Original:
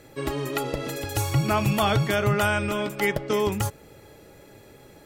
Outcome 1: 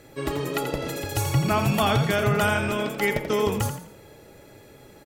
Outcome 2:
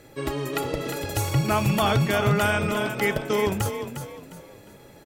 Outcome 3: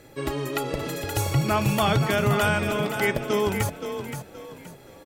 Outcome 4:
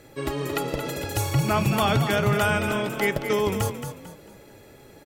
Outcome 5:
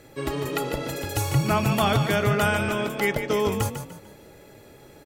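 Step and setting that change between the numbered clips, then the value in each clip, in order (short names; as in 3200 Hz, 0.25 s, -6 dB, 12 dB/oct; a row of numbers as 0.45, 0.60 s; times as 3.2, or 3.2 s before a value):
frequency-shifting echo, time: 85, 355, 523, 223, 148 ms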